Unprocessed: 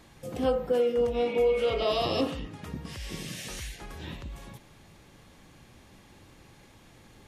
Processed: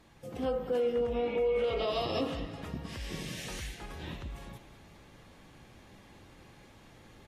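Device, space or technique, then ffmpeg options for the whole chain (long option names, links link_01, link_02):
low-bitrate web radio: -filter_complex "[0:a]asettb=1/sr,asplit=3[link_01][link_02][link_03];[link_01]atrim=end=0.934[link_04];[link_02]atrim=start=0.93:end=1.64,asetpts=PTS-STARTPTS,afade=type=in:duration=0.004:curve=qsin,afade=type=out:start_time=0.706:duration=0.004:curve=qsin,acrossover=split=3300[link_05][link_06];[link_06]acompressor=threshold=-56dB:ratio=4:attack=1:release=60[link_07];[link_05][link_07]amix=inputs=2:normalize=0[link_08];[link_03]atrim=start=1.636[link_09];[link_04][link_08]acrossfade=duration=0.004:curve1=hsin:curve2=qsin[link_10];[link_10][link_09]acrossfade=duration=0.004:curve1=qsin:curve2=hsin,equalizer=frequency=11000:width_type=o:width=1.9:gain=-4.5,aecho=1:1:192|384|576|768|960:0.141|0.0763|0.0412|0.0222|0.012,dynaudnorm=framelen=430:gausssize=3:maxgain=4dB,alimiter=limit=-17dB:level=0:latency=1:release=85,volume=-5.5dB" -ar 44100 -c:a aac -b:a 48k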